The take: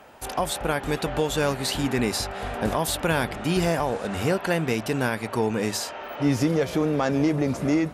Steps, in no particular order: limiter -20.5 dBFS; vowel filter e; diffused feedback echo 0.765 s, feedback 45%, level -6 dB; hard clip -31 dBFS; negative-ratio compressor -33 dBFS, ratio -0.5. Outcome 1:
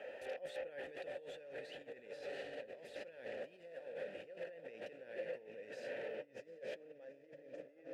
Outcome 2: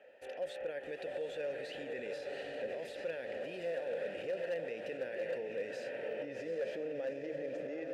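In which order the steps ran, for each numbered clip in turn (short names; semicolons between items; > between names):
diffused feedback echo > negative-ratio compressor > limiter > hard clip > vowel filter; diffused feedback echo > limiter > vowel filter > negative-ratio compressor > hard clip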